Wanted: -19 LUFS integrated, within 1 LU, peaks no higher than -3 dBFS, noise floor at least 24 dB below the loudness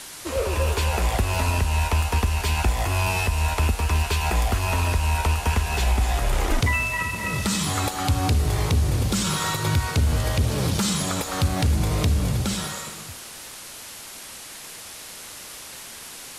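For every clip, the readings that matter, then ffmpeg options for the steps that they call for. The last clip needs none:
noise floor -40 dBFS; noise floor target -48 dBFS; loudness -23.5 LUFS; peak -11.0 dBFS; loudness target -19.0 LUFS
-> -af "afftdn=nr=8:nf=-40"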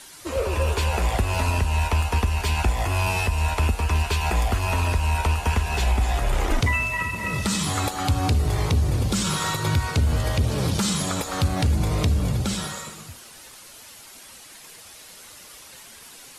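noise floor -45 dBFS; noise floor target -48 dBFS
-> -af "afftdn=nr=6:nf=-45"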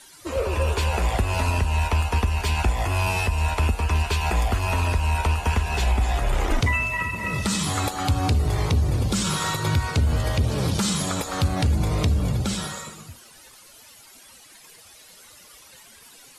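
noise floor -49 dBFS; loudness -23.5 LUFS; peak -11.5 dBFS; loudness target -19.0 LUFS
-> -af "volume=4.5dB"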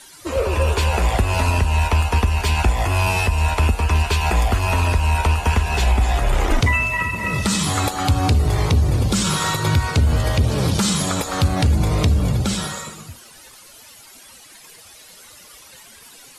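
loudness -19.0 LUFS; peak -7.0 dBFS; noise floor -45 dBFS

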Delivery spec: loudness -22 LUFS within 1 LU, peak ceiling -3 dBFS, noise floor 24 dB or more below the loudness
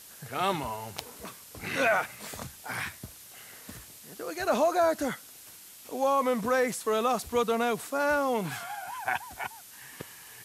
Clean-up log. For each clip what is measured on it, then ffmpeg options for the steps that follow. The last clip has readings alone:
noise floor -50 dBFS; noise floor target -54 dBFS; loudness -29.5 LUFS; peak -14.0 dBFS; loudness target -22.0 LUFS
-> -af "afftdn=nr=6:nf=-50"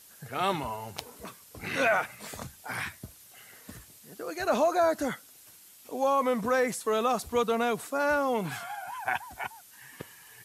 noise floor -54 dBFS; loudness -29.0 LUFS; peak -14.5 dBFS; loudness target -22.0 LUFS
-> -af "volume=7dB"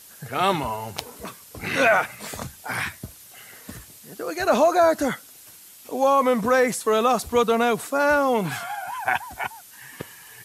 loudness -22.0 LUFS; peak -7.5 dBFS; noise floor -47 dBFS

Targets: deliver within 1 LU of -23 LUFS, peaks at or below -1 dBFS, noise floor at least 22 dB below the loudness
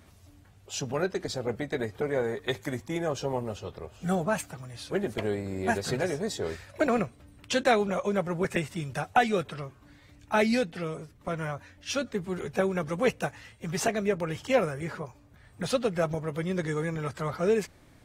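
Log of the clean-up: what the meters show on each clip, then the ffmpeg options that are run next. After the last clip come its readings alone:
loudness -30.0 LUFS; peak -9.5 dBFS; loudness target -23.0 LUFS
-> -af "volume=7dB"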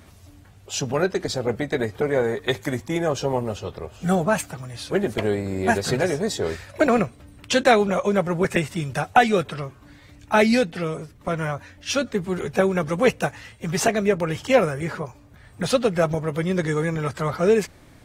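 loudness -23.0 LUFS; peak -2.5 dBFS; noise floor -50 dBFS

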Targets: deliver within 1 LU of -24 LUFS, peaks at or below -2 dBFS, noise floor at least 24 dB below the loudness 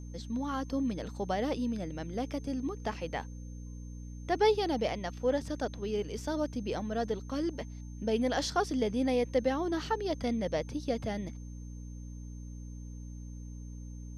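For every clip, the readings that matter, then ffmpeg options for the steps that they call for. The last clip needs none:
hum 60 Hz; harmonics up to 300 Hz; hum level -41 dBFS; steady tone 6300 Hz; tone level -60 dBFS; loudness -33.0 LUFS; peak -15.0 dBFS; loudness target -24.0 LUFS
-> -af "bandreject=f=60:t=h:w=6,bandreject=f=120:t=h:w=6,bandreject=f=180:t=h:w=6,bandreject=f=240:t=h:w=6,bandreject=f=300:t=h:w=6"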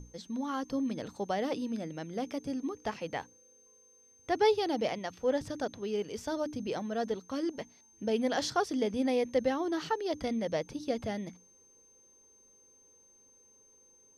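hum none; steady tone 6300 Hz; tone level -60 dBFS
-> -af "bandreject=f=6.3k:w=30"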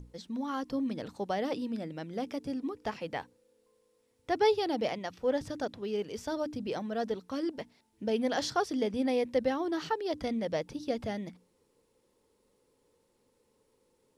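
steady tone none; loudness -33.5 LUFS; peak -15.5 dBFS; loudness target -24.0 LUFS
-> -af "volume=9.5dB"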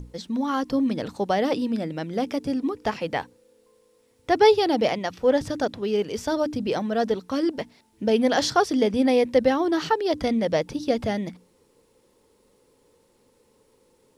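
loudness -24.0 LUFS; peak -6.0 dBFS; noise floor -63 dBFS

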